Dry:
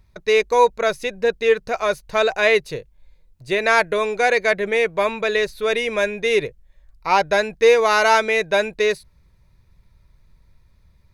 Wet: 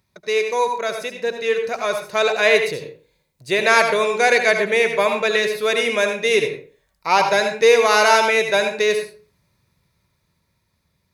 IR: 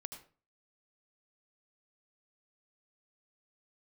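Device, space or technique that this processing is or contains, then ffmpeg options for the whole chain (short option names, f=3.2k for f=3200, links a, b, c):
far laptop microphone: -filter_complex "[1:a]atrim=start_sample=2205[a];[0:a][a]afir=irnorm=-1:irlink=0,highpass=140,dynaudnorm=f=380:g=11:m=11.5dB,highshelf=f=3.9k:g=7,volume=-1dB"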